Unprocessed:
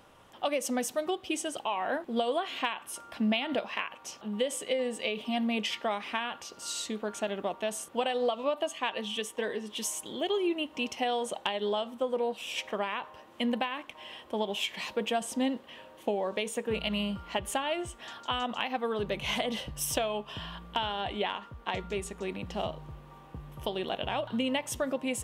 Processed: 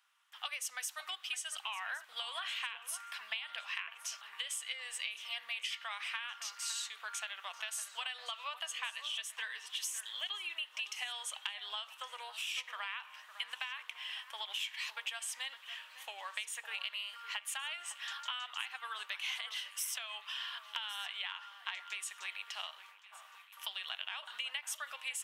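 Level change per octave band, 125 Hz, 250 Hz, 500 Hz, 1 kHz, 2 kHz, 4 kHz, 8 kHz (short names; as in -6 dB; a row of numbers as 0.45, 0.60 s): under -40 dB, under -40 dB, -28.5 dB, -12.0 dB, -3.0 dB, -2.5 dB, -2.5 dB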